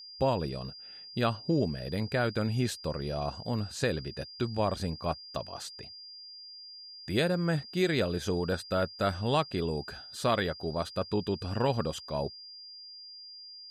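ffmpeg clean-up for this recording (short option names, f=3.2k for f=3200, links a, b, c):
-af "bandreject=f=4.8k:w=30"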